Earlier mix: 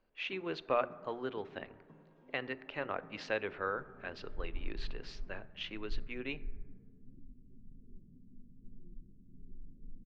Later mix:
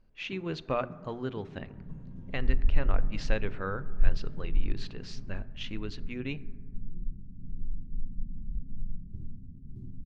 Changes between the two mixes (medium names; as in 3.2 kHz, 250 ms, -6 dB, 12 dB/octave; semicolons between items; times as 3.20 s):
second sound: entry -1.90 s; master: remove three-band isolator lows -16 dB, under 310 Hz, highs -13 dB, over 4.4 kHz